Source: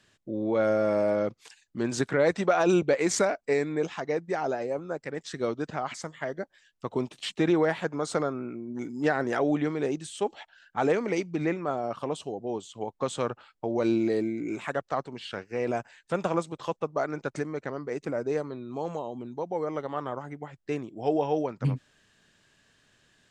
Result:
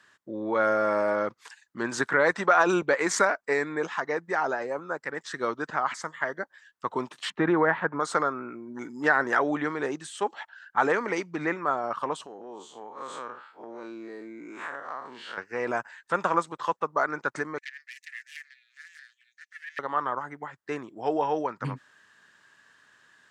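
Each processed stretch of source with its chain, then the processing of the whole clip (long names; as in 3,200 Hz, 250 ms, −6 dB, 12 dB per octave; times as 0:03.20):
0:07.30–0:08.00: low-pass filter 2,200 Hz + low-shelf EQ 190 Hz +8.5 dB
0:12.26–0:15.38: spectrum smeared in time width 102 ms + high-pass filter 190 Hz + downward compressor 4 to 1, threshold −37 dBFS
0:17.58–0:19.79: phase distortion by the signal itself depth 0.36 ms + Chebyshev high-pass with heavy ripple 1,700 Hz, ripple 3 dB
whole clip: high-pass filter 300 Hz 6 dB per octave; flat-topped bell 1,300 Hz +9.5 dB 1.3 octaves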